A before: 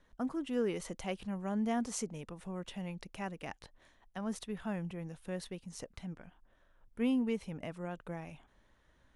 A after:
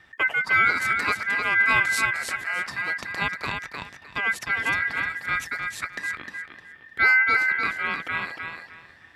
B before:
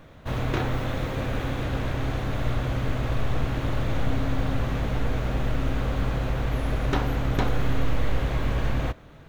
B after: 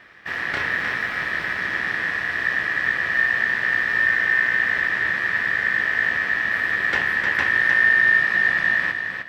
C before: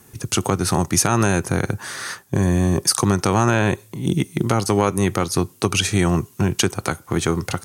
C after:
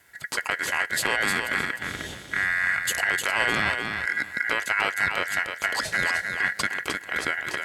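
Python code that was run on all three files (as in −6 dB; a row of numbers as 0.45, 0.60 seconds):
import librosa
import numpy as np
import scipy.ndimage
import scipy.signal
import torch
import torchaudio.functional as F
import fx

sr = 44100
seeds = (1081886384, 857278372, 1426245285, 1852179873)

p1 = x + fx.echo_feedback(x, sr, ms=306, feedback_pct=24, wet_db=-5.5, dry=0)
p2 = p1 * np.sin(2.0 * np.pi * 1800.0 * np.arange(len(p1)) / sr)
p3 = scipy.signal.sosfilt(scipy.signal.butter(2, 74.0, 'highpass', fs=sr, output='sos'), p2)
p4 = fx.tilt_eq(p3, sr, slope=-1.5)
y = p4 * 10.0 ** (-6 / 20.0) / np.max(np.abs(p4))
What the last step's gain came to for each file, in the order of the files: +16.5, +4.0, −3.5 decibels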